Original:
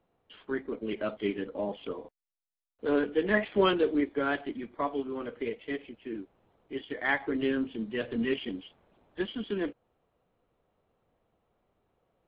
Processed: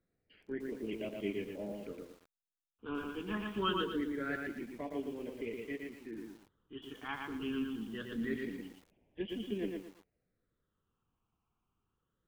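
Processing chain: phaser stages 8, 0.24 Hz, lowest notch 560–1300 Hz; lo-fi delay 0.116 s, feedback 35%, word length 9-bit, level -3 dB; gain -6 dB

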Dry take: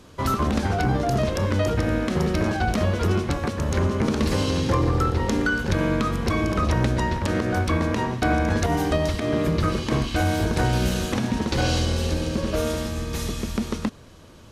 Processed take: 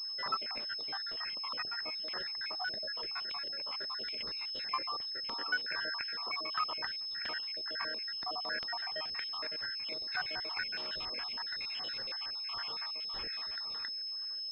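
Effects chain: random spectral dropouts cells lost 73%; HPF 1500 Hz 12 dB/oct; pulse-width modulation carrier 5200 Hz

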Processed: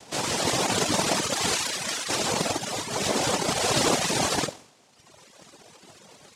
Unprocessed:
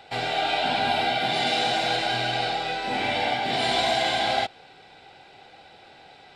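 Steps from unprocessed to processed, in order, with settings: spectral delete 1.55–2.08, 360–2100 Hz; chorus 0.32 Hz, delay 18.5 ms, depth 5.8 ms; on a send: flutter echo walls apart 11.9 m, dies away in 0.61 s; on the sum: noise vocoder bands 2; reverb removal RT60 1.3 s; gain +4 dB

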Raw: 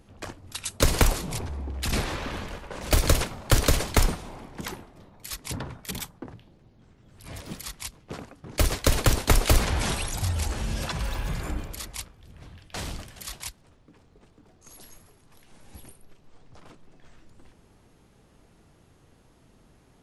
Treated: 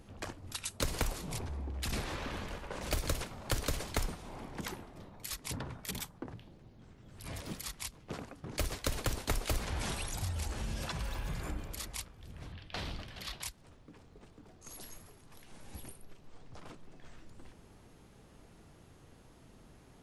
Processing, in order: 12.52–13.43 resonant high shelf 5600 Hz -10.5 dB, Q 1.5; compressor 2:1, threshold -41 dBFS, peak gain reduction 15 dB

